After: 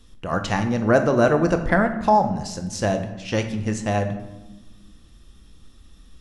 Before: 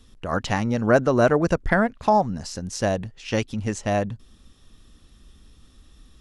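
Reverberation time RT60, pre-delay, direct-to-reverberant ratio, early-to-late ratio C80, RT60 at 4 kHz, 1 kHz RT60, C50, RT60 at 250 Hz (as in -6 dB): 1.1 s, 6 ms, 6.0 dB, 12.0 dB, 0.65 s, 1.0 s, 9.5 dB, 1.8 s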